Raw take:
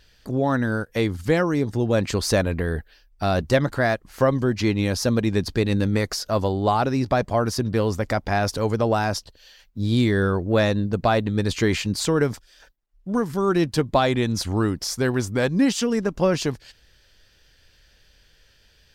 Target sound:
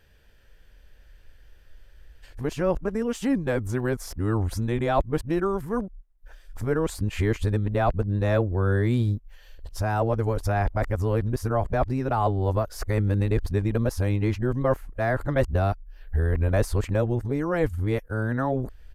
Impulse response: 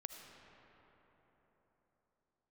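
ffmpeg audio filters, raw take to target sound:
-filter_complex "[0:a]areverse,equalizer=frequency=4800:width=0.8:gain=-14.5,asplit=2[link_01][link_02];[link_02]acompressor=threshold=-31dB:ratio=6,volume=-2dB[link_03];[link_01][link_03]amix=inputs=2:normalize=0,aresample=32000,aresample=44100,asubboost=boost=7:cutoff=64,volume=-4dB"

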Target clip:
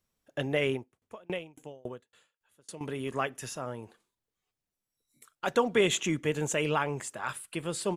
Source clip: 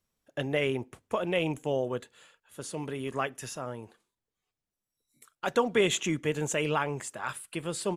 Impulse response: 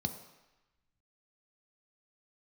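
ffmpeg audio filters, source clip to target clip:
-filter_complex "[0:a]asettb=1/sr,asplit=3[link_01][link_02][link_03];[link_01]atrim=end=0.744[link_04];[link_02]atrim=start=0.74:end=2.81,asetpts=PTS-STARTPTS,afade=type=in:duration=0.004:curve=qsin,afade=type=out:start_time=2.066:duration=0.004:curve=qsin,aeval=exprs='val(0)*pow(10,-33*if(lt(mod(3.6*n/s,1),2*abs(3.6)/1000),1-mod(3.6*n/s,1)/(2*abs(3.6)/1000),(mod(3.6*n/s,1)-2*abs(3.6)/1000)/(1-2*abs(3.6)/1000))/20)':channel_layout=same[link_05];[link_03]atrim=start=2.806[link_06];[link_04][link_05]acrossfade=duration=0.004:curve1=hsin:curve2=qsin[link_07];[link_07][link_06]acrossfade=duration=0.004:curve1=qsin:curve2=hsin"

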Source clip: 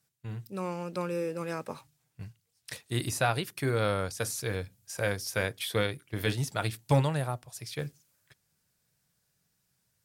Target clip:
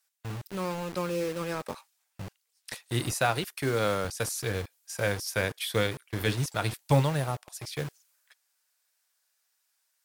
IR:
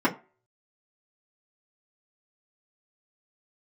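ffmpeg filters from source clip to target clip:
-filter_complex "[0:a]asettb=1/sr,asplit=3[link_01][link_02][link_03];[link_01]atrim=end=3.114[link_04];[link_02]atrim=start=3.11:end=4.05,asetpts=PTS-STARTPTS,afade=type=in:duration=0.004:curve=qsin,afade=type=out:start_time=0.936:duration=0.004:curve=qsin,highpass=130[link_05];[link_03]atrim=start=4.046[link_06];[link_04][link_05]acrossfade=duration=0.004:curve1=hsin:curve2=qsin[link_07];[link_07][link_06]acrossfade=duration=0.004:curve1=qsin:curve2=hsin,acrossover=split=640[link_08][link_09];[link_08]acrusher=bits=6:mix=0:aa=0.000001[link_10];[link_10][link_09]amix=inputs=2:normalize=0,volume=1.5dB"

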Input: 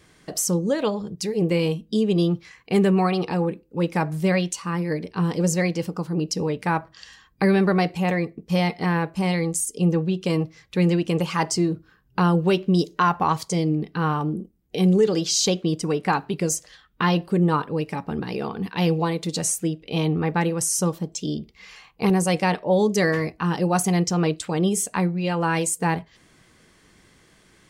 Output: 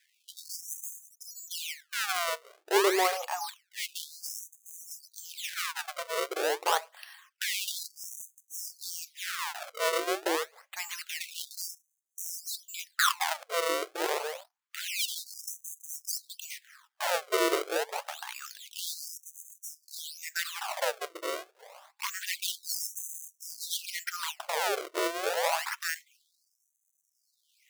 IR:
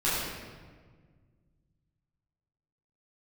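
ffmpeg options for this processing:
-filter_complex "[0:a]highshelf=frequency=7700:gain=-11,acrusher=samples=30:mix=1:aa=0.000001:lfo=1:lforange=48:lforate=0.53,asettb=1/sr,asplit=3[link_01][link_02][link_03];[link_01]atrim=end=14.184[link_04];[link_02]atrim=start=14.18:end=14.88,asetpts=PTS-STARTPTS,afade=type=in:duration=0.004:curve=qsin,afade=type=out:start_time=0.696:duration=0.004:curve=qsin,aeval=exprs='abs(val(0))':channel_layout=same[link_05];[link_03]atrim=start=14.876[link_06];[link_04][link_05]acrossfade=duration=0.004:curve1=hsin:curve2=qsin[link_07];[link_07][link_06]acrossfade=duration=0.004:curve1=qsin:curve2=hsin,afftfilt=real='re*gte(b*sr/1024,320*pow(6100/320,0.5+0.5*sin(2*PI*0.27*pts/sr)))':imag='im*gte(b*sr/1024,320*pow(6100/320,0.5+0.5*sin(2*PI*0.27*pts/sr)))':win_size=1024:overlap=0.75,volume=-2dB"

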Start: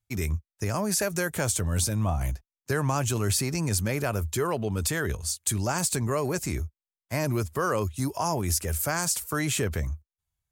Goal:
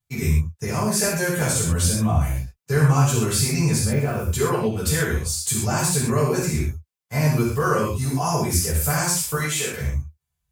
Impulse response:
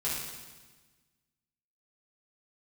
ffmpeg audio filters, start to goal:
-filter_complex "[0:a]asettb=1/sr,asplit=3[link_01][link_02][link_03];[link_01]atrim=end=3.784[link_04];[link_02]atrim=start=3.78:end=4.19,asetpts=PTS-STARTPTS,afade=type=in:duration=0.004:curve=qsin,afade=type=out:start_time=0.406:duration=0.004:curve=qsin,deesser=1[link_05];[link_03]atrim=start=4.186[link_06];[link_04][link_05]acrossfade=duration=0.004:curve1=hsin:curve2=qsin[link_07];[link_07][link_06]acrossfade=duration=0.004:curve1=qsin:curve2=hsin,asettb=1/sr,asplit=3[link_08][link_09][link_10];[link_08]atrim=end=9.354[link_11];[link_09]atrim=start=9.35:end=9.81,asetpts=PTS-STARTPTS,afade=type=in:duration=0.004:curve=qsin,afade=type=out:start_time=0.456:duration=0.004:curve=qsin,highpass=frequency=720:poles=1[link_12];[link_10]atrim=start=9.806[link_13];[link_11][link_12]acrossfade=duration=0.004:curve1=hsin:curve2=qsin[link_14];[link_14][link_13]acrossfade=duration=0.004:curve1=qsin:curve2=hsin[link_15];[1:a]atrim=start_sample=2205,atrim=end_sample=6615[link_16];[link_15][link_16]afir=irnorm=-1:irlink=0"

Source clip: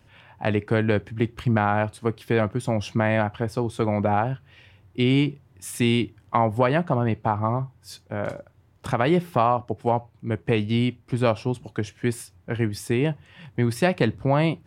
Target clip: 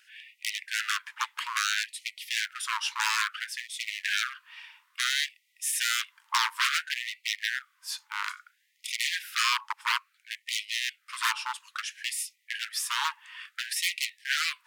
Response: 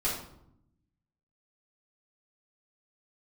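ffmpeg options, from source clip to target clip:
-af "aeval=exprs='0.075*(abs(mod(val(0)/0.075+3,4)-2)-1)':channel_layout=same,afftfilt=real='re*gte(b*sr/1024,820*pow(1900/820,0.5+0.5*sin(2*PI*0.59*pts/sr)))':imag='im*gte(b*sr/1024,820*pow(1900/820,0.5+0.5*sin(2*PI*0.59*pts/sr)))':win_size=1024:overlap=0.75,volume=6dB"

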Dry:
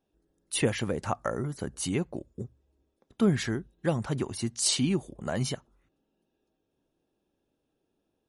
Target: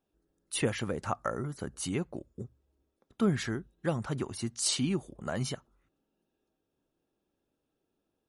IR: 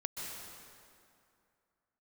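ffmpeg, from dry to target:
-af "equalizer=frequency=1300:width=3.2:gain=4.5,volume=-3.5dB"

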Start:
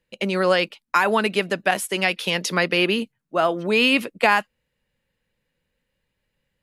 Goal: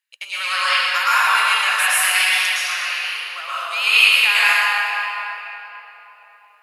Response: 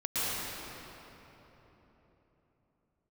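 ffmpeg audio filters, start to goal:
-filter_complex "[0:a]highpass=frequency=1100:width=0.5412,highpass=frequency=1100:width=1.3066,highshelf=frequency=5100:gain=8.5,asettb=1/sr,asplit=3[link_01][link_02][link_03];[link_01]atrim=end=2.254[link_04];[link_02]atrim=start=2.25:end=3.58,asetpts=PTS-STARTPTS,afade=type=in:duration=0.004:curve=qsin,afade=type=out:start_time=1.326:duration=0.004:curve=qsin,acompressor=threshold=-27dB:ratio=6[link_05];[link_03]atrim=start=3.576[link_06];[link_04][link_05]acrossfade=duration=0.004:curve1=hsin:curve2=qsin[link_07];[link_07][link_06]acrossfade=duration=0.004:curve1=qsin:curve2=hsin[link_08];[1:a]atrim=start_sample=2205[link_09];[link_08][link_09]afir=irnorm=-1:irlink=0,volume=-1.5dB"

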